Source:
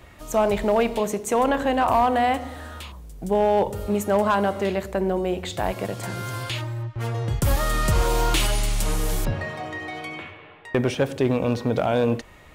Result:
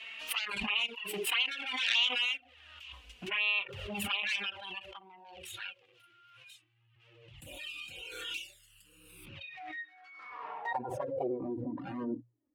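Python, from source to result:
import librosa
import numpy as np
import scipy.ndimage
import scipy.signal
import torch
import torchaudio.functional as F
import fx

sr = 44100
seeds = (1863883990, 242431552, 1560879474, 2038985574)

y = fx.self_delay(x, sr, depth_ms=0.77)
y = fx.noise_reduce_blind(y, sr, reduce_db=22)
y = fx.hum_notches(y, sr, base_hz=60, count=3)
y = fx.env_flanger(y, sr, rest_ms=4.5, full_db=-17.0)
y = fx.filter_sweep_bandpass(y, sr, from_hz=2800.0, to_hz=290.0, start_s=9.41, end_s=11.68, q=6.4)
y = fx.pre_swell(y, sr, db_per_s=34.0)
y = y * 10.0 ** (3.0 / 20.0)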